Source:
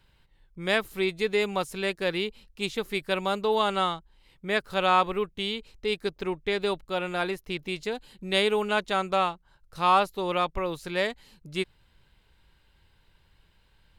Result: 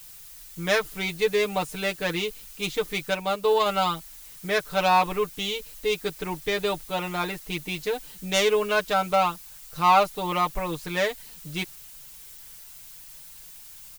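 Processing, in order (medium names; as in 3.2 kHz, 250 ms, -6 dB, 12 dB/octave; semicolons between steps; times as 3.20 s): self-modulated delay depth 0.071 ms; added noise blue -48 dBFS; comb 6.6 ms, depth 89%; 3.11–3.66 s: upward expansion 1.5:1, over -29 dBFS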